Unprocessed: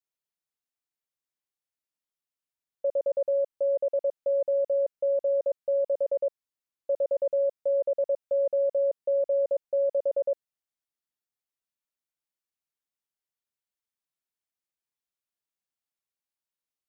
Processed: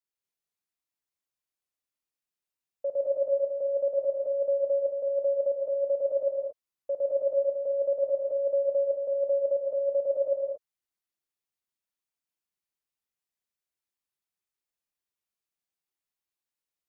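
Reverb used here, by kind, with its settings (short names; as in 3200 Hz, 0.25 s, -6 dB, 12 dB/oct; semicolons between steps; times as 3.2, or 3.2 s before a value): non-linear reverb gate 0.25 s rising, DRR -1 dB; gain -3.5 dB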